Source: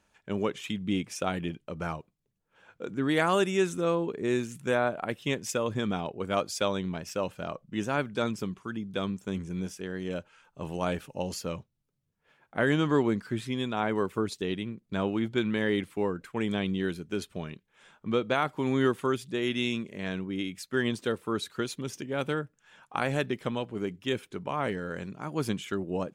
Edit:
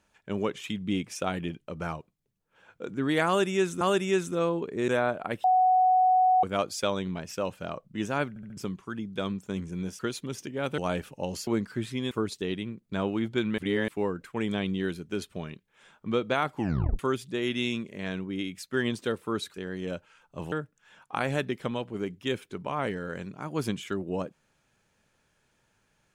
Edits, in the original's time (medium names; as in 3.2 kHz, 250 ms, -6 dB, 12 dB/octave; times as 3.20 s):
3.27–3.81 s: loop, 2 plays
4.34–4.66 s: delete
5.22–6.21 s: bleep 742 Hz -18 dBFS
8.07 s: stutter in place 0.07 s, 4 plays
9.77–10.75 s: swap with 21.54–22.33 s
11.44–13.02 s: delete
13.66–14.11 s: delete
15.58–15.88 s: reverse
18.55 s: tape stop 0.44 s